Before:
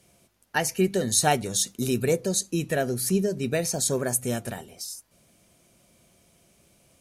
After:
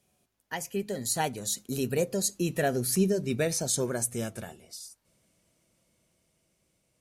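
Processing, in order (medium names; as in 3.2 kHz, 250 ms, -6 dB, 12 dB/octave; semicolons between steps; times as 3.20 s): Doppler pass-by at 2.96 s, 21 m/s, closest 21 m; trim -1 dB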